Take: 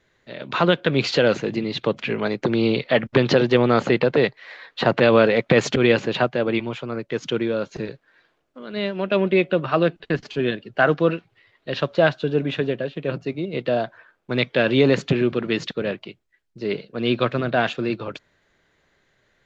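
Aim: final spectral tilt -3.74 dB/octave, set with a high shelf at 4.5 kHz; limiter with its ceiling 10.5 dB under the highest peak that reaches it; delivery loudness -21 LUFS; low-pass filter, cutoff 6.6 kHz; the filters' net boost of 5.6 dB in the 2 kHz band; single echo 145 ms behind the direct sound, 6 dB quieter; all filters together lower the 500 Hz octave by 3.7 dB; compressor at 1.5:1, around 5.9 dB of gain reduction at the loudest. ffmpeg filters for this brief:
-af "lowpass=6600,equalizer=f=500:t=o:g=-5,equalizer=f=2000:t=o:g=8.5,highshelf=f=4500:g=-4.5,acompressor=threshold=0.0398:ratio=1.5,alimiter=limit=0.126:level=0:latency=1,aecho=1:1:145:0.501,volume=2.51"

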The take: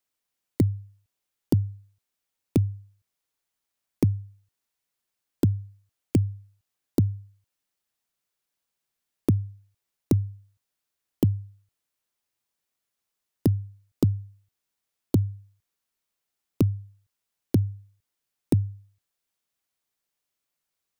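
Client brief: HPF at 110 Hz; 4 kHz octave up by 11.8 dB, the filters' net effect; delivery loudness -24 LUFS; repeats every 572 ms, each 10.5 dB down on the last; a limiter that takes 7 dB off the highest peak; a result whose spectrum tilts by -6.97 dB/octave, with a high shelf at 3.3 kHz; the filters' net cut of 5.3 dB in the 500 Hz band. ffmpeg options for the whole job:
-af "highpass=110,equalizer=f=500:t=o:g=-8.5,highshelf=f=3300:g=8,equalizer=f=4000:t=o:g=9,alimiter=limit=0.178:level=0:latency=1,aecho=1:1:572|1144|1716:0.299|0.0896|0.0269,volume=3.55"

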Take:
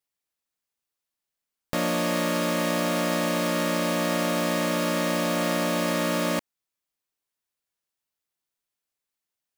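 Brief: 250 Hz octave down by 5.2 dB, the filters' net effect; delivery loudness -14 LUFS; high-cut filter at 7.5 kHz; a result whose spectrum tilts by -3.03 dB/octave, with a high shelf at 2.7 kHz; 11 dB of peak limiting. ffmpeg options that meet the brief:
-af "lowpass=7500,equalizer=f=250:t=o:g=-7,highshelf=f=2700:g=5,volume=7.5,alimiter=limit=0.596:level=0:latency=1"

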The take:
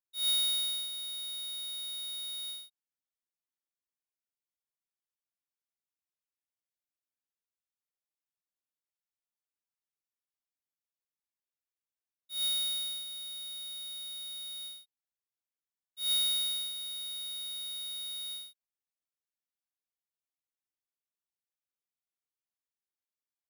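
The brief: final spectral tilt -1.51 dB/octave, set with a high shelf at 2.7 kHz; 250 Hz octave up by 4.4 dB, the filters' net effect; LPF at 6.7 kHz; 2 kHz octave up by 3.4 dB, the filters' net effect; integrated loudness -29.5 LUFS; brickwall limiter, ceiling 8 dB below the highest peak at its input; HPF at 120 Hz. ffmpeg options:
-af "highpass=120,lowpass=6700,equalizer=f=250:t=o:g=9,equalizer=f=2000:t=o:g=5.5,highshelf=f=2700:g=-4,volume=2.66,alimiter=level_in=1.19:limit=0.0631:level=0:latency=1,volume=0.841"

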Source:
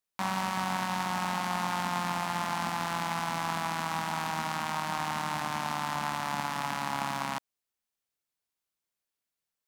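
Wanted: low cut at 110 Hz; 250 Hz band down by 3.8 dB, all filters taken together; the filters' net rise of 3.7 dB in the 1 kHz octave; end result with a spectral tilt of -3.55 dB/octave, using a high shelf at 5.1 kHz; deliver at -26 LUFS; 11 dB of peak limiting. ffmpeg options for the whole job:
-af "highpass=110,equalizer=f=250:t=o:g=-5.5,equalizer=f=1000:t=o:g=4.5,highshelf=f=5100:g=3.5,volume=3.55,alimiter=limit=0.211:level=0:latency=1"

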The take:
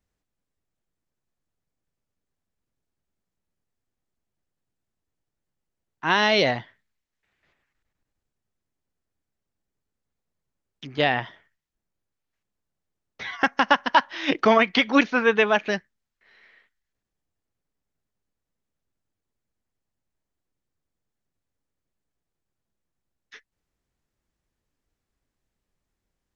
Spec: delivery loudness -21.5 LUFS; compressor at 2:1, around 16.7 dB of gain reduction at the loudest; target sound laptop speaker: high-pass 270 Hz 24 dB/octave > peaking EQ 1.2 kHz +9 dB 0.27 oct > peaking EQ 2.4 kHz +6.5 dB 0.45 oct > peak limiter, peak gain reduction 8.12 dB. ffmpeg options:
-af "acompressor=threshold=0.00562:ratio=2,highpass=f=270:w=0.5412,highpass=f=270:w=1.3066,equalizer=f=1200:t=o:w=0.27:g=9,equalizer=f=2400:t=o:w=0.45:g=6.5,volume=7.08,alimiter=limit=0.376:level=0:latency=1"

